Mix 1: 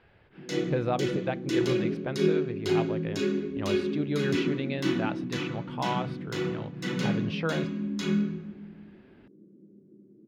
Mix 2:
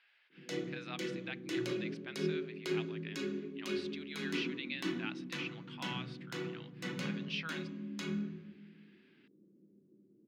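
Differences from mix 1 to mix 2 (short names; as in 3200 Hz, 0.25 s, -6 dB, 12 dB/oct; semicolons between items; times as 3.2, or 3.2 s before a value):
speech: add Butterworth band-pass 4200 Hz, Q 0.66; background: send -11.0 dB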